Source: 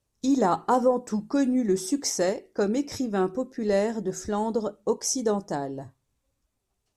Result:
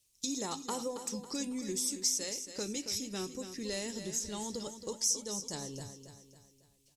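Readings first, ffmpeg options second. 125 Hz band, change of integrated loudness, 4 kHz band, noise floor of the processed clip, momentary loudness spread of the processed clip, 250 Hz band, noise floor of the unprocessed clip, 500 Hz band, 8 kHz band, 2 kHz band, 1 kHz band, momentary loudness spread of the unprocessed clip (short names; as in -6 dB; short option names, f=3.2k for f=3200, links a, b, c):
-11.0 dB, -9.0 dB, +0.5 dB, -69 dBFS, 10 LU, -14.0 dB, -79 dBFS, -16.0 dB, 0.0 dB, -9.5 dB, -17.0 dB, 7 LU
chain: -af "aexciter=amount=6.2:drive=5.5:freq=2.2k,equalizer=f=700:w=4:g=-7.5,acompressor=threshold=-31dB:ratio=2,asubboost=boost=2:cutoff=170,aecho=1:1:275|550|825|1100|1375:0.316|0.139|0.0612|0.0269|0.0119,volume=-8dB"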